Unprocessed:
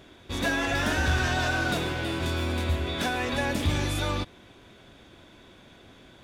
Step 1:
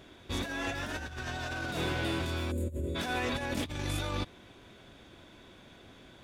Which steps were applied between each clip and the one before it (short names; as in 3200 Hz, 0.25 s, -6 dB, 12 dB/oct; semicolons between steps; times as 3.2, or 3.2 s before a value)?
spectral gain 2.51–2.96, 630–6700 Hz -22 dB; negative-ratio compressor -29 dBFS, ratio -0.5; gain -4.5 dB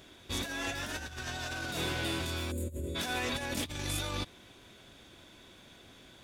high shelf 3400 Hz +10 dB; gain -3 dB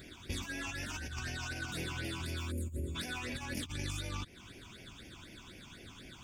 compressor 5:1, threshold -41 dBFS, peak gain reduction 10.5 dB; phaser stages 8, 4 Hz, lowest notch 500–1200 Hz; gain +6 dB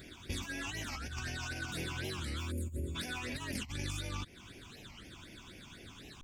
record warp 45 rpm, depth 250 cents